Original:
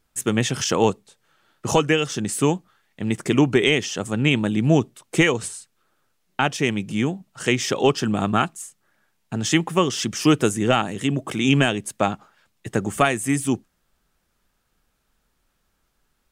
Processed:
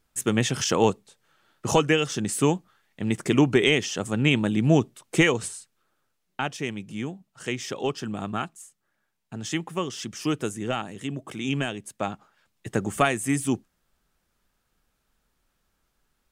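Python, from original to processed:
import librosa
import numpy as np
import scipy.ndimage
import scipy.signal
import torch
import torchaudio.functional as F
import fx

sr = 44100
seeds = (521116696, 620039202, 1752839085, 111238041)

y = fx.gain(x, sr, db=fx.line((5.38, -2.0), (6.76, -9.5), (11.85, -9.5), (12.69, -3.0)))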